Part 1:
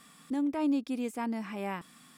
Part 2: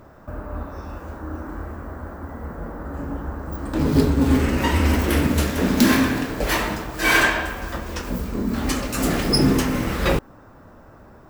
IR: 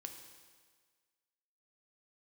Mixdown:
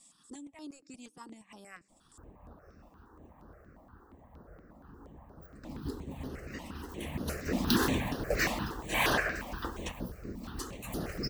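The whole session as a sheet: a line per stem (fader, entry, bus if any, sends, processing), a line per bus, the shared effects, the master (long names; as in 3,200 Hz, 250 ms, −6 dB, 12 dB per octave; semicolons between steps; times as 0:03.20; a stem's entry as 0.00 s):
−4.5 dB, 0.00 s, send −12 dB, bass and treble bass +4 dB, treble +5 dB; transient designer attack +1 dB, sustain −12 dB; low-pass with resonance 7,900 Hz, resonance Q 3.6
0:06.91 −14 dB → 0:07.68 −1.5 dB → 0:09.85 −1.5 dB → 0:10.11 −9.5 dB, 1.90 s, no send, no processing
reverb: on, RT60 1.6 s, pre-delay 3 ms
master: harmonic and percussive parts rebalanced harmonic −15 dB; high-shelf EQ 9,500 Hz −3.5 dB; step-sequenced phaser 8.5 Hz 410–7,600 Hz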